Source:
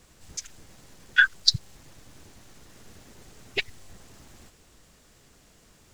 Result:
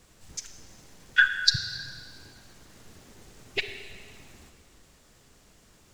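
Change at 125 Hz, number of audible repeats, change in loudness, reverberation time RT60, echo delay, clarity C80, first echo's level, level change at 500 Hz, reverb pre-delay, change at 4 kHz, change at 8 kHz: -1.0 dB, no echo, -2.0 dB, 1.8 s, no echo, 8.5 dB, no echo, -0.5 dB, 32 ms, -1.0 dB, -1.0 dB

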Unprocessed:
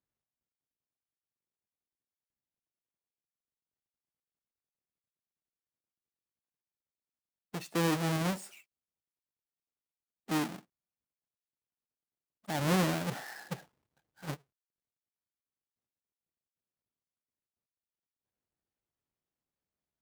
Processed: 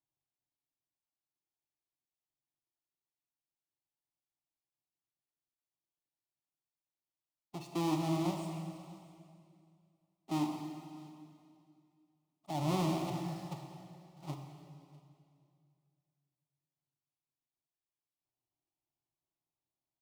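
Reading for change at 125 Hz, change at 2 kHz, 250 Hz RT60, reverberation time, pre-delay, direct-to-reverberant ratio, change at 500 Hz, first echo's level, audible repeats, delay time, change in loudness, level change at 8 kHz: -2.5 dB, -12.5 dB, 2.6 s, 2.4 s, 20 ms, 3.5 dB, -4.0 dB, -22.5 dB, 1, 650 ms, -4.0 dB, -7.5 dB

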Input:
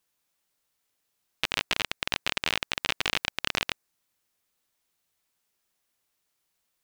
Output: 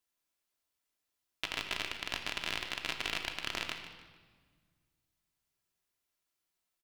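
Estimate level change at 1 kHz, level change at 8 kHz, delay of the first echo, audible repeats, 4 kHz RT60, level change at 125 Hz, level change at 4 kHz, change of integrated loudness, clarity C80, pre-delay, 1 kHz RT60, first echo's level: -7.0 dB, -8.0 dB, 149 ms, 2, 1.3 s, -7.5 dB, -7.5 dB, -7.5 dB, 7.5 dB, 3 ms, 1.5 s, -12.0 dB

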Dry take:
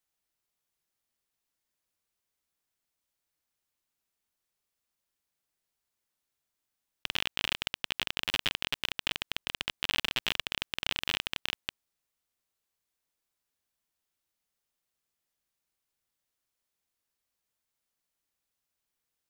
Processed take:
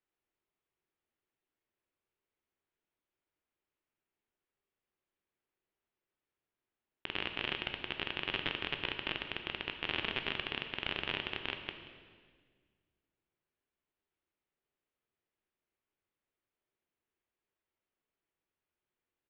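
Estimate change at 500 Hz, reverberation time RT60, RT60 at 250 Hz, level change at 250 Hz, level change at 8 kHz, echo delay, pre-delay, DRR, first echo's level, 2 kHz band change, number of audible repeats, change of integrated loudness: +2.5 dB, 1.7 s, 2.1 s, +2.0 dB, under -25 dB, 181 ms, 12 ms, 5.5 dB, -18.0 dB, -2.5 dB, 1, -4.5 dB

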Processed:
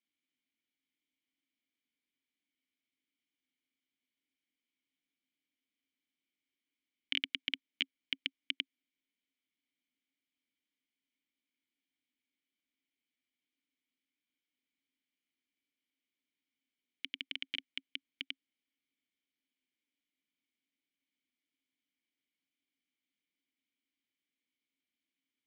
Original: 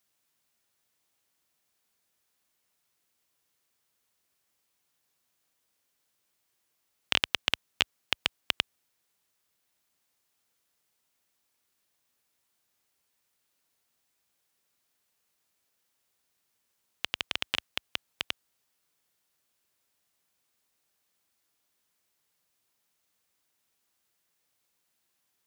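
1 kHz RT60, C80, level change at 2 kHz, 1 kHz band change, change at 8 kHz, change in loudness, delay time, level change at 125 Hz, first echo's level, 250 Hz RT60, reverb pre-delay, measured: no reverb, no reverb, -8.5 dB, -27.0 dB, under -20 dB, -8.0 dB, no echo, under -20 dB, no echo, no reverb, no reverb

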